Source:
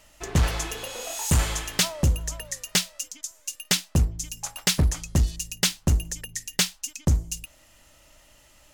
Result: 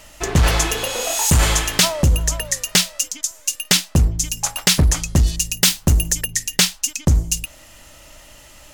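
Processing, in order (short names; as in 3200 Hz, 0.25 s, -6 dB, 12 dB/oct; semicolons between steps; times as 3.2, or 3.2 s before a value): 5.54–6.26 high shelf 11000 Hz +9 dB; in parallel at +1 dB: negative-ratio compressor -24 dBFS, ratio -1; on the sum: gain +3 dB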